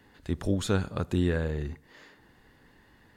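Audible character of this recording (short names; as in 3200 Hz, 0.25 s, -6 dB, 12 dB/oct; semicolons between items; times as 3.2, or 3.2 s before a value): noise floor -60 dBFS; spectral tilt -6.5 dB/oct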